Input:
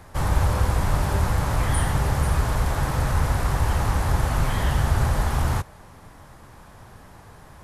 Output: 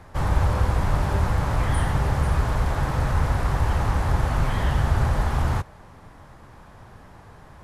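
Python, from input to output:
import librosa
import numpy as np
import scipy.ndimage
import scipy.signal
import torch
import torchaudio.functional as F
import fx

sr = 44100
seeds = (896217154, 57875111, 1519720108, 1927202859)

y = fx.lowpass(x, sr, hz=3700.0, slope=6)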